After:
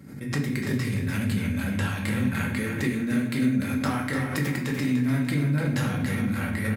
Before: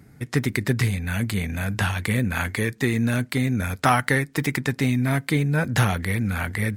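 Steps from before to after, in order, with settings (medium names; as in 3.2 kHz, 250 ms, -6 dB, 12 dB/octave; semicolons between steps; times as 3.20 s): high-pass 110 Hz; bass shelf 180 Hz +8 dB; band-stop 770 Hz, Q 12; comb 3.7 ms, depth 32%; compression, threshold -20 dBFS, peak gain reduction 7.5 dB; on a send: feedback delay 295 ms, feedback 35%, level -7 dB; on the sum: simulated room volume 150 m³, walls mixed, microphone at 1.1 m; swell ahead of each attack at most 66 dB/s; trim -8 dB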